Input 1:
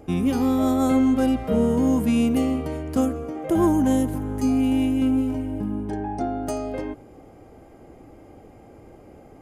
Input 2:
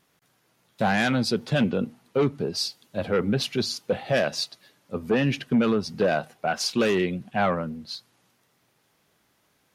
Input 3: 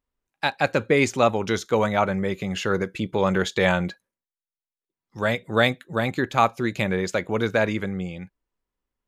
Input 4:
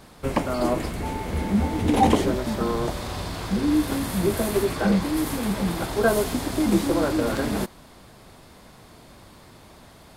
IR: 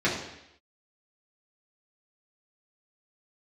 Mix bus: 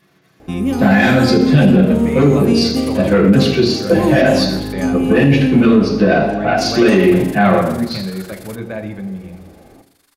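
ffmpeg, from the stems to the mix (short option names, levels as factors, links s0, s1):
-filter_complex "[0:a]adelay=400,volume=1.33,asplit=2[s0][s1];[s1]volume=0.0841[s2];[1:a]volume=1.26,asplit=2[s3][s4];[s4]volume=0.596[s5];[2:a]aemphasis=mode=reproduction:type=bsi,adelay=1150,volume=0.316,asplit=2[s6][s7];[s7]volume=0.158[s8];[3:a]highpass=1100,equalizer=f=1500:w=0.9:g=7,crystalizer=i=5:c=0,adelay=900,volume=0.2,asplit=3[s9][s10][s11];[s9]atrim=end=4.73,asetpts=PTS-STARTPTS,afade=t=out:st=4.726:d=0.004:c=hsin[s12];[s10]atrim=start=4.73:end=6.58,asetpts=PTS-STARTPTS,volume=0[s13];[s11]atrim=start=6.58,asetpts=PTS-STARTPTS,afade=t=in:d=0.004:c=hsin[s14];[s12][s13][s14]concat=n=3:v=0:a=1[s15];[s3][s15]amix=inputs=2:normalize=0,tremolo=f=24:d=0.824,acompressor=threshold=0.0355:ratio=6,volume=1[s16];[4:a]atrim=start_sample=2205[s17];[s2][s5][s8]amix=inputs=3:normalize=0[s18];[s18][s17]afir=irnorm=-1:irlink=0[s19];[s0][s6][s16][s19]amix=inputs=4:normalize=0,alimiter=limit=0.75:level=0:latency=1:release=32"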